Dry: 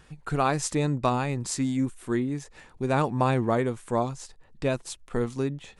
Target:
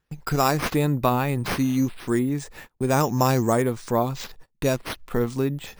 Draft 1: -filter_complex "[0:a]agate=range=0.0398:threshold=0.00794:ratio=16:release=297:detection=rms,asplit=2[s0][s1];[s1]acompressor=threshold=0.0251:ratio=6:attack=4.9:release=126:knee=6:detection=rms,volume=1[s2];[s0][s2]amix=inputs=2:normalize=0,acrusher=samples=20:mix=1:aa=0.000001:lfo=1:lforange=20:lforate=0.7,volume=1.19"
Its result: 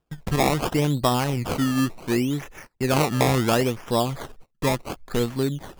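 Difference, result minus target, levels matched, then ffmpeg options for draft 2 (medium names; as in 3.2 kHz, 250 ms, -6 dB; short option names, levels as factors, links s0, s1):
decimation with a swept rate: distortion +9 dB
-filter_complex "[0:a]agate=range=0.0398:threshold=0.00794:ratio=16:release=297:detection=rms,asplit=2[s0][s1];[s1]acompressor=threshold=0.0251:ratio=6:attack=4.9:release=126:knee=6:detection=rms,volume=1[s2];[s0][s2]amix=inputs=2:normalize=0,acrusher=samples=5:mix=1:aa=0.000001:lfo=1:lforange=5:lforate=0.7,volume=1.19"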